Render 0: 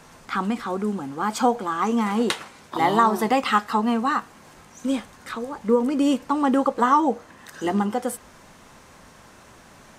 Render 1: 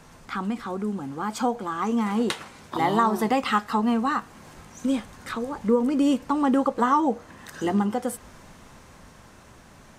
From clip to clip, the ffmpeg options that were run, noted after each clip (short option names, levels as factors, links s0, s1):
-filter_complex "[0:a]asplit=2[s0][s1];[s1]acompressor=threshold=0.0355:ratio=6,volume=0.841[s2];[s0][s2]amix=inputs=2:normalize=0,lowshelf=f=180:g=7.5,dynaudnorm=f=300:g=13:m=3.76,volume=0.376"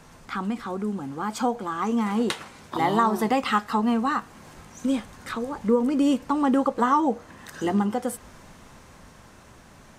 -af anull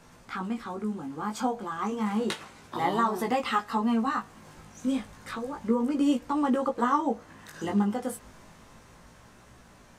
-af "flanger=delay=16.5:depth=3:speed=0.31,volume=0.891"